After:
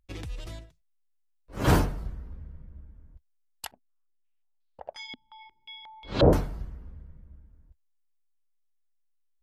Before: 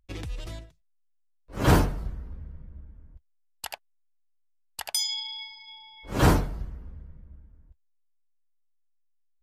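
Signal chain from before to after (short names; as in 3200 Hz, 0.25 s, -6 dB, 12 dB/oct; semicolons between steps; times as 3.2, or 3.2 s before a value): 3.71–6.33 stepped low-pass 5.6 Hz 250–4000 Hz; gain -2 dB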